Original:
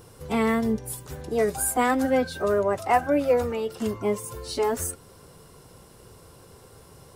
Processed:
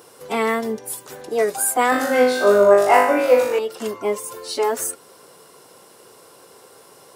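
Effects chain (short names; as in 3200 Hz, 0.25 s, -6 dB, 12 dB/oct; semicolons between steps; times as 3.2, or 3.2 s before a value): HPF 360 Hz 12 dB/oct; 1.9–3.59 flutter echo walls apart 3.4 m, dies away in 0.71 s; gain +5.5 dB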